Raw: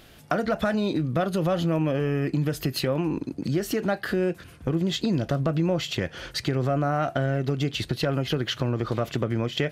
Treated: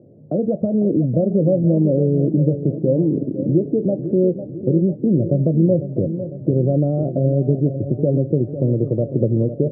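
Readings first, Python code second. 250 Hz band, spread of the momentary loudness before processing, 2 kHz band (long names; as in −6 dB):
+8.5 dB, 4 LU, below −40 dB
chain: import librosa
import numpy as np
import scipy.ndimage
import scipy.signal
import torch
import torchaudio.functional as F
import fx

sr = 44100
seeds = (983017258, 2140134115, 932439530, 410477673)

y = scipy.signal.sosfilt(scipy.signal.cheby1(4, 1.0, [100.0, 570.0], 'bandpass', fs=sr, output='sos'), x)
y = fx.echo_feedback(y, sr, ms=501, feedback_pct=57, wet_db=-11.0)
y = F.gain(torch.from_numpy(y), 8.5).numpy()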